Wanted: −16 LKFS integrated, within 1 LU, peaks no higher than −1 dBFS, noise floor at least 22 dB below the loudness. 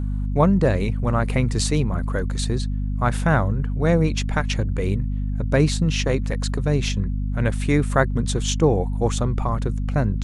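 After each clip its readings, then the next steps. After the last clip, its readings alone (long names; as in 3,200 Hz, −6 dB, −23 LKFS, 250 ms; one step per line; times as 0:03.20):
mains hum 50 Hz; hum harmonics up to 250 Hz; level of the hum −21 dBFS; integrated loudness −22.0 LKFS; sample peak −3.0 dBFS; target loudness −16.0 LKFS
→ mains-hum notches 50/100/150/200/250 Hz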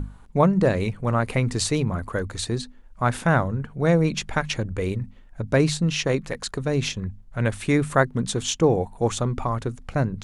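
mains hum none found; integrated loudness −24.0 LKFS; sample peak −4.0 dBFS; target loudness −16.0 LKFS
→ level +8 dB
brickwall limiter −1 dBFS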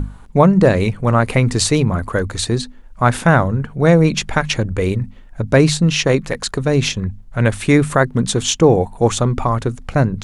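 integrated loudness −16.5 LKFS; sample peak −1.0 dBFS; background noise floor −39 dBFS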